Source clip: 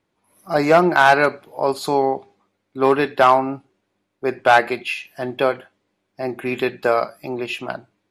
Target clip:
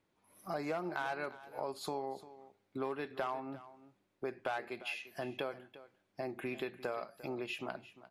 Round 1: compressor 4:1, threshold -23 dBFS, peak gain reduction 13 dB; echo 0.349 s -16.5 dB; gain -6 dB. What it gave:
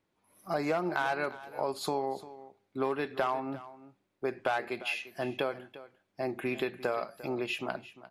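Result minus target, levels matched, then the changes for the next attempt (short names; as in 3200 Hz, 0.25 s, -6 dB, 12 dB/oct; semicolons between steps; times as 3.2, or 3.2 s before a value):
compressor: peak gain reduction -7 dB
change: compressor 4:1, threshold -32.5 dBFS, peak gain reduction 20 dB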